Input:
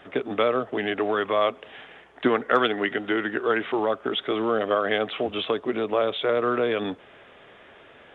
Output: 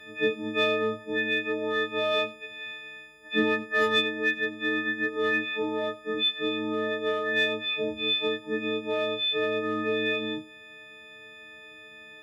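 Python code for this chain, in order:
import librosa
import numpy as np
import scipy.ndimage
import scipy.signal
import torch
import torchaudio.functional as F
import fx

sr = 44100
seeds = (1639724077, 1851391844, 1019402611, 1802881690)

p1 = fx.freq_snap(x, sr, grid_st=6)
p2 = np.clip(10.0 ** (15.0 / 20.0) * p1, -1.0, 1.0) / 10.0 ** (15.0 / 20.0)
p3 = p1 + F.gain(torch.from_numpy(p2), -9.5).numpy()
p4 = fx.stretch_vocoder(p3, sr, factor=1.5)
p5 = p4 + fx.echo_single(p4, sr, ms=90, db=-19.5, dry=0)
p6 = fx.rider(p5, sr, range_db=5, speed_s=2.0)
p7 = fx.band_shelf(p6, sr, hz=920.0, db=-10.5, octaves=1.2)
y = F.gain(torch.from_numpy(p7), -7.5).numpy()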